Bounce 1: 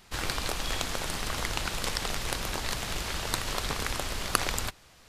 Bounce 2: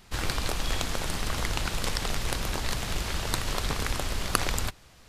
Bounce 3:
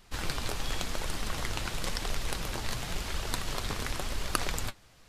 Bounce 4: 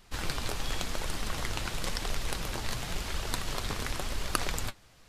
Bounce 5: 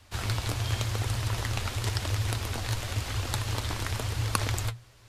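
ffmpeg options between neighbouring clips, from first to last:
-af "lowshelf=f=270:g=5.5"
-af "flanger=delay=1.6:depth=8.3:regen=57:speed=0.94:shape=triangular"
-af anull
-af "afreqshift=-120,volume=1.5dB"

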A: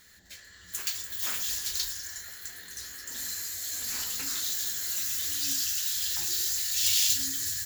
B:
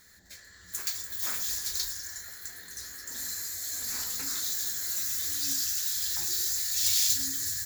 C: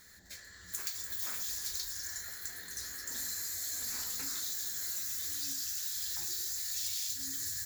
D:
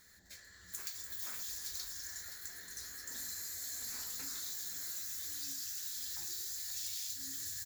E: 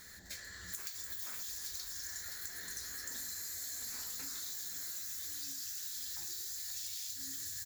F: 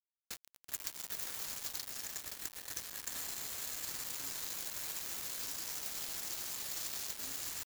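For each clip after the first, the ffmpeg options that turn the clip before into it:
-af "equalizer=f=2.9k:t=o:w=0.4:g=-11"
-af "acompressor=threshold=-34dB:ratio=6"
-af "aecho=1:1:521:0.282,volume=-5dB"
-af "acompressor=threshold=-50dB:ratio=4,volume=9dB"
-af "aeval=exprs='val(0)*gte(abs(val(0)),0.0126)':c=same,volume=4.5dB"

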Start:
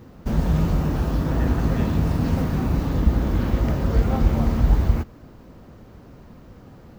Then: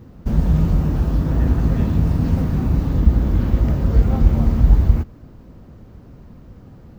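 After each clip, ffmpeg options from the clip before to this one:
-af "lowshelf=f=280:g=9,volume=-3.5dB"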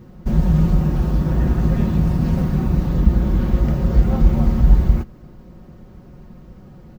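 -af "aecho=1:1:5.5:0.5"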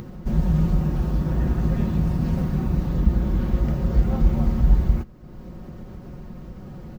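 -af "acompressor=mode=upward:threshold=-23dB:ratio=2.5,volume=-4.5dB"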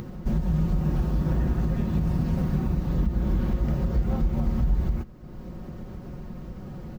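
-af "alimiter=limit=-15.5dB:level=0:latency=1:release=189"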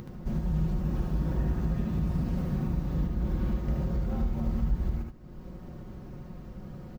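-af "aecho=1:1:75:0.631,volume=-6dB"

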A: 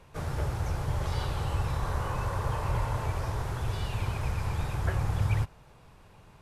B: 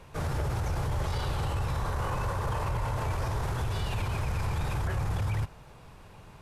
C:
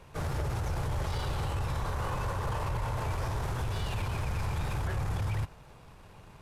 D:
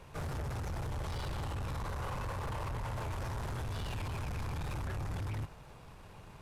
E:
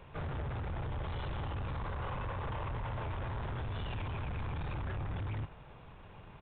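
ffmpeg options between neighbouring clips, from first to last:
-af "alimiter=level_in=3.5dB:limit=-24dB:level=0:latency=1:release=21,volume=-3.5dB,volume=4.5dB"
-af "aeval=exprs='0.075*(cos(1*acos(clip(val(0)/0.075,-1,1)))-cos(1*PI/2))+0.00422*(cos(8*acos(clip(val(0)/0.075,-1,1)))-cos(8*PI/2))':c=same,volume=-2dB"
-af "asoftclip=type=tanh:threshold=-34.5dB"
-af "aresample=8000,aresample=44100"

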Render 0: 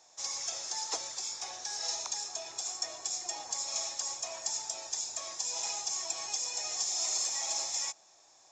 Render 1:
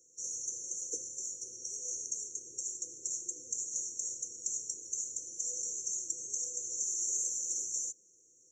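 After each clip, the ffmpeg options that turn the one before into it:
-af "afftfilt=real='re*(1-between(b*sr/4096,530,5600))':imag='im*(1-between(b*sr/4096,530,5600))':win_size=4096:overlap=0.75"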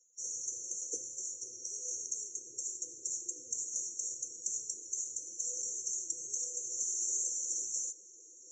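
-af "areverse,acompressor=mode=upward:threshold=-43dB:ratio=2.5,areverse,lowpass=9.9k,afftdn=nr=21:nf=-58"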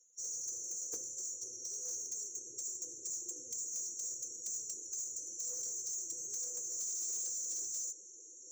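-af "asoftclip=type=tanh:threshold=-37dB,volume=1.5dB"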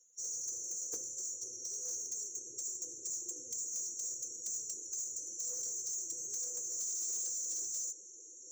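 -af "bandreject=f=2.4k:w=26,volume=1dB"

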